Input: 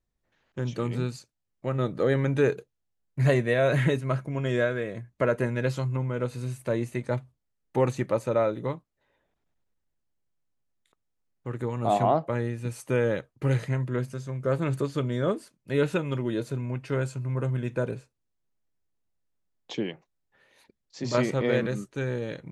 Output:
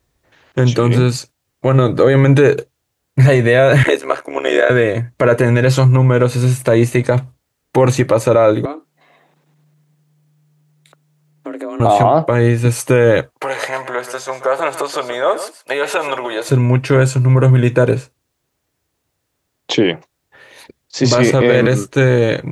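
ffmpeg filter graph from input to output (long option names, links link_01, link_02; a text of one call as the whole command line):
ffmpeg -i in.wav -filter_complex "[0:a]asettb=1/sr,asplit=3[link_01][link_02][link_03];[link_01]atrim=end=3.834[link_04];[link_02]atrim=start=3.83:end=4.7,asetpts=PTS-STARTPTS,afade=type=in:duration=0.004:curve=qsin,afade=type=out:start_time=0.866:duration=0.004:curve=qsin,highpass=frequency=360:width=0.5412,highpass=frequency=360:width=1.3066,tremolo=f=73:d=0.889[link_05];[link_03]atrim=start=4.696[link_06];[link_04][link_05]acrossfade=duration=0.004:curve1=hsin:curve2=qsin[link_07];[link_07][link_06]acrossfade=duration=0.004:curve1=qsin:curve2=hsin,asettb=1/sr,asplit=3[link_08][link_09][link_10];[link_08]atrim=end=8.654[link_11];[link_09]atrim=start=8.65:end=11.8,asetpts=PTS-STARTPTS,afade=type=in:duration=0.004:curve=qsin,afade=type=out:start_time=3.146:duration=0.004:curve=qsin,acompressor=threshold=-46dB:ratio=3:attack=3.2:release=140:knee=1:detection=peak,afreqshift=150[link_12];[link_10]atrim=start=11.796[link_13];[link_11][link_12]acrossfade=duration=0.004:curve1=hsin:curve2=qsin[link_14];[link_14][link_13]acrossfade=duration=0.004:curve1=qsin:curve2=hsin,asettb=1/sr,asplit=3[link_15][link_16][link_17];[link_15]atrim=end=13.334[link_18];[link_16]atrim=start=13.33:end=16.49,asetpts=PTS-STARTPTS,afade=type=in:duration=0.004:curve=qsin,afade=type=out:start_time=3.156:duration=0.004:curve=qsin,acompressor=threshold=-28dB:ratio=6:attack=3.2:release=140:knee=1:detection=peak,highpass=frequency=740:width_type=q:width=2.2,aecho=1:1:131:0.237,atrim=end_sample=139356[link_19];[link_17]atrim=start=16.486[link_20];[link_18][link_19]acrossfade=duration=0.004:curve1=hsin:curve2=qsin[link_21];[link_21][link_20]acrossfade=duration=0.004:curve1=qsin:curve2=hsin,highpass=61,equalizer=frequency=200:width_type=o:width=0.24:gain=-14,alimiter=level_in=21dB:limit=-1dB:release=50:level=0:latency=1,volume=-1dB" out.wav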